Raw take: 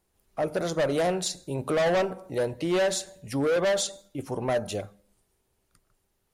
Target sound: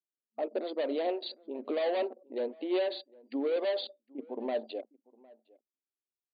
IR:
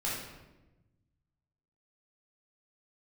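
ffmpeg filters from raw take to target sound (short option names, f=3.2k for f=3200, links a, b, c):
-filter_complex "[0:a]anlmdn=6.31,aphaser=in_gain=1:out_gain=1:delay=4.4:decay=0.23:speed=1.8:type=sinusoidal,equalizer=f=1.4k:w=1.6:g=-12.5,asplit=2[a][b];[b]adelay=758,volume=-24dB,highshelf=f=4k:g=-17.1[c];[a][c]amix=inputs=2:normalize=0,afftfilt=real='re*between(b*sr/4096,220,4700)':imag='im*between(b*sr/4096,220,4700)':win_size=4096:overlap=0.75,volume=-5dB"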